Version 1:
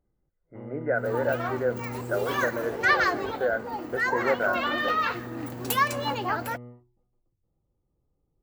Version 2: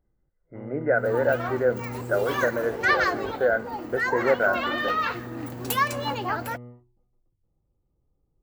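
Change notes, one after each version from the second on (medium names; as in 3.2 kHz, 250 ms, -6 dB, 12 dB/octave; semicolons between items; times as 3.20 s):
speech +4.0 dB; master: add bass shelf 82 Hz +5 dB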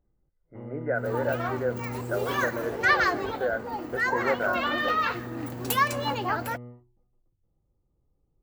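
speech -6.0 dB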